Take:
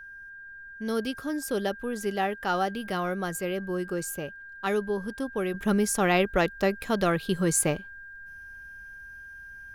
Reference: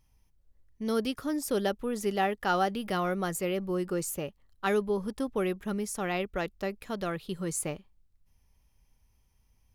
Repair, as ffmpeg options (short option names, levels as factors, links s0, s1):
-af "bandreject=f=1600:w=30,agate=range=0.0891:threshold=0.0141,asetnsamples=n=441:p=0,asendcmd='5.54 volume volume -8.5dB',volume=1"